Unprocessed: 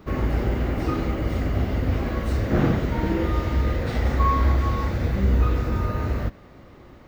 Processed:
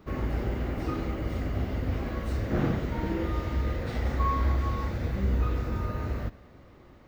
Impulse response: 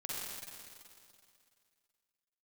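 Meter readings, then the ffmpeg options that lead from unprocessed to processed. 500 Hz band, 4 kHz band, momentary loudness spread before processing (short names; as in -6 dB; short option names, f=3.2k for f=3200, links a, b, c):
-6.5 dB, -6.5 dB, 5 LU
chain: -filter_complex "[0:a]asplit=2[a][b];[1:a]atrim=start_sample=2205,adelay=28[c];[b][c]afir=irnorm=-1:irlink=0,volume=-23dB[d];[a][d]amix=inputs=2:normalize=0,volume=-6.5dB"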